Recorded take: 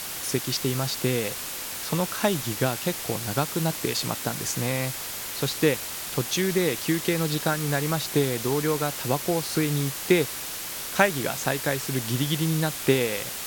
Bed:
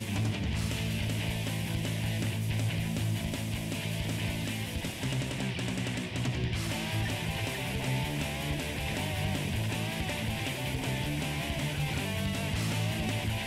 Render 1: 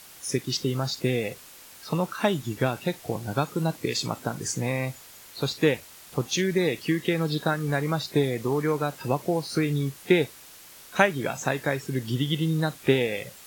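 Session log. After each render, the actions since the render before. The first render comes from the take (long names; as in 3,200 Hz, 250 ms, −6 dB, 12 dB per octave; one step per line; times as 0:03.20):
noise reduction from a noise print 14 dB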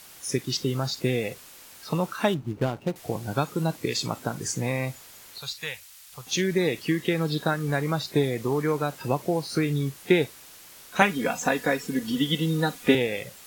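0:02.34–0:02.96: running median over 25 samples
0:05.38–0:06.27: guitar amp tone stack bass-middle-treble 10-0-10
0:11.01–0:12.95: comb filter 4.1 ms, depth 96%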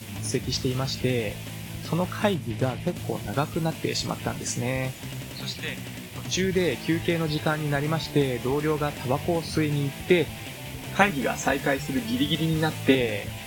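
mix in bed −4 dB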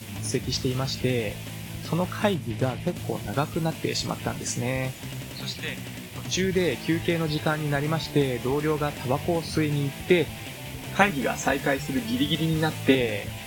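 no processing that can be heard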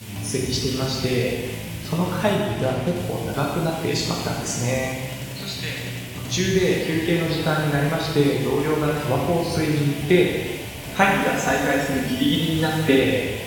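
reverb whose tail is shaped and stops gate 480 ms falling, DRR −2 dB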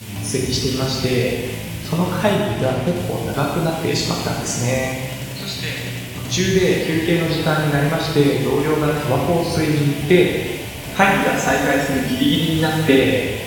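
level +3.5 dB
brickwall limiter −1 dBFS, peak gain reduction 1 dB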